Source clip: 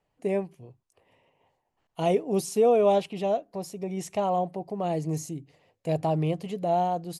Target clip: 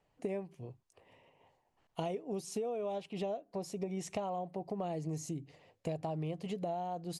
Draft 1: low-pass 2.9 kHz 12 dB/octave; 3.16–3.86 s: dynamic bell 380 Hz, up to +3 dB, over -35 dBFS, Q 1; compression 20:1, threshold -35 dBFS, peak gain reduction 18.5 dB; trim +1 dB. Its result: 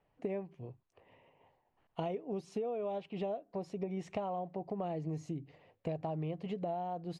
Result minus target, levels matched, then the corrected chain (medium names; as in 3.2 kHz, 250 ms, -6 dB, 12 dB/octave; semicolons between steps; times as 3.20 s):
8 kHz band -15.0 dB
low-pass 9.1 kHz 12 dB/octave; 3.16–3.86 s: dynamic bell 380 Hz, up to +3 dB, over -35 dBFS, Q 1; compression 20:1, threshold -35 dBFS, peak gain reduction 19 dB; trim +1 dB